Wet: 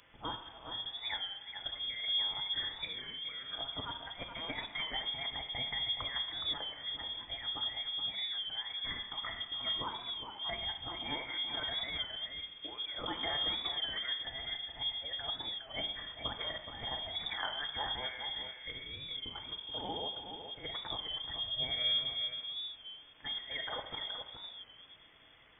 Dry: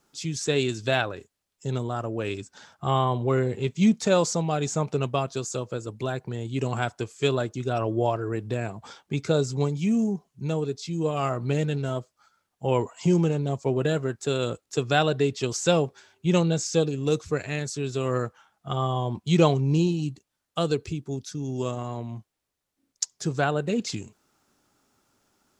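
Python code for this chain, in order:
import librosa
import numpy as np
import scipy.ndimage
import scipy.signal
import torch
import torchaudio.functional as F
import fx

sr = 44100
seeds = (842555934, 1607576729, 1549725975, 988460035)

p1 = scipy.signal.sosfilt(scipy.signal.cheby2(4, 40, [180.0, 750.0], 'bandstop', fs=sr, output='sos'), x)
p2 = fx.peak_eq(p1, sr, hz=910.0, db=-15.0, octaves=0.35)
p3 = fx.over_compress(p2, sr, threshold_db=-42.0, ratio=-0.5)
p4 = fx.quant_dither(p3, sr, seeds[0], bits=10, dither='triangular')
p5 = fx.vibrato(p4, sr, rate_hz=2.0, depth_cents=5.8)
p6 = p5 + fx.echo_single(p5, sr, ms=422, db=-8.0, dry=0)
p7 = fx.room_shoebox(p6, sr, seeds[1], volume_m3=1300.0, walls='mixed', distance_m=0.98)
p8 = fx.freq_invert(p7, sr, carrier_hz=3400)
p9 = fx.record_warp(p8, sr, rpm=33.33, depth_cents=100.0)
y = p9 * librosa.db_to_amplitude(1.5)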